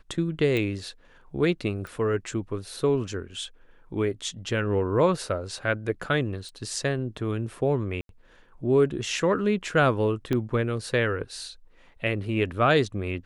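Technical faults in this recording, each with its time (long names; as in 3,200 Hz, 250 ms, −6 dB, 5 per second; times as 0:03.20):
0:00.57: click −16 dBFS
0:01.87: click
0:06.49: click −32 dBFS
0:08.01–0:08.09: drop-out 82 ms
0:10.33: click −14 dBFS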